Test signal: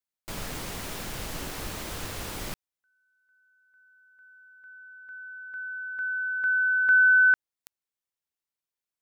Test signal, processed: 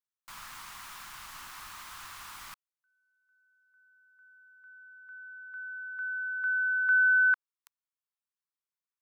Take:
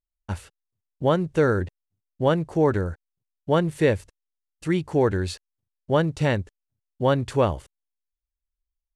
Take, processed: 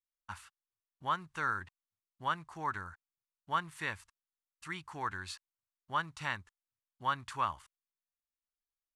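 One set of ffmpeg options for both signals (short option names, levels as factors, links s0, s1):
-af "lowshelf=f=740:t=q:w=3:g=-13.5,volume=0.355"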